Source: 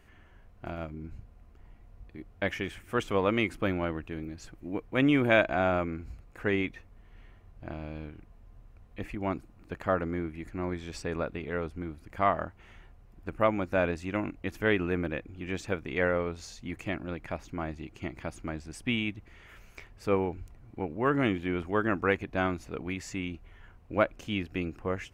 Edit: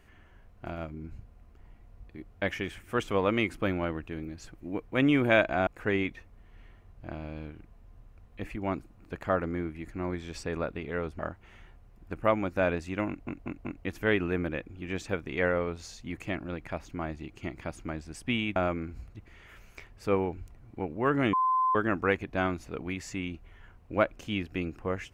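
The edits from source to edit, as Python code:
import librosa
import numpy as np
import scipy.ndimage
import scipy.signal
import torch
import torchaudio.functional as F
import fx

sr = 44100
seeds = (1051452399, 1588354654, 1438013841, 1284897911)

y = fx.edit(x, sr, fx.move(start_s=5.67, length_s=0.59, to_s=19.15),
    fx.cut(start_s=11.78, length_s=0.57),
    fx.stutter(start_s=14.24, slice_s=0.19, count=4),
    fx.bleep(start_s=21.33, length_s=0.42, hz=1030.0, db=-22.5), tone=tone)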